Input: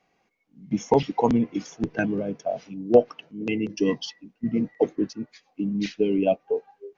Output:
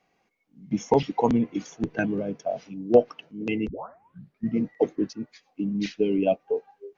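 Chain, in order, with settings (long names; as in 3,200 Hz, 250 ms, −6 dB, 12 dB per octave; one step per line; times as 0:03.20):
0:01.09–0:02.20: notch filter 5,200 Hz, Q 9.3
0:03.68: tape start 0.80 s
level −1 dB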